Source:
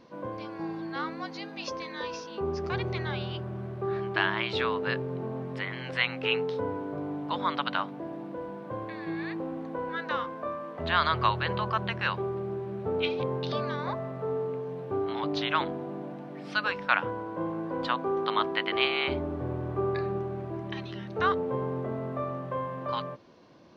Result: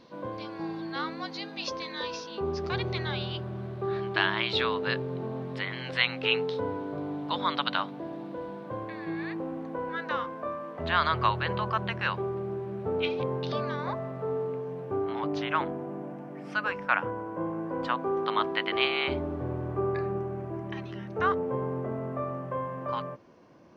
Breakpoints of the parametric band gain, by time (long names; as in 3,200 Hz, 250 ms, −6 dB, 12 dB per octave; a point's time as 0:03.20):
parametric band 3,900 Hz 0.7 octaves
0:08.52 +6.5 dB
0:08.94 −2.5 dB
0:14.47 −2.5 dB
0:15.55 −12.5 dB
0:17.49 −12.5 dB
0:18.59 −0.5 dB
0:19.16 −0.5 dB
0:20.03 −10 dB